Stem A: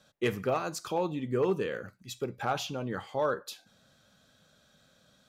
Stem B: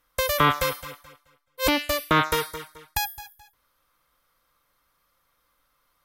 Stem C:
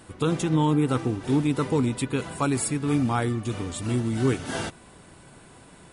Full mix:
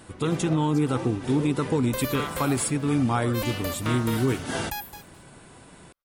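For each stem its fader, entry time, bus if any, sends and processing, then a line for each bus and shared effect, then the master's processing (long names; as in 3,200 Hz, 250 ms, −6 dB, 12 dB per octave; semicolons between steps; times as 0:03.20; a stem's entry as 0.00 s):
−7.5 dB, 0.00 s, no send, no processing
−14.0 dB, 1.75 s, no send, downward compressor, threshold −21 dBFS, peak gain reduction 7 dB; leveller curve on the samples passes 3
+1.0 dB, 0.00 s, no send, no processing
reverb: not used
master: brickwall limiter −14.5 dBFS, peak gain reduction 4.5 dB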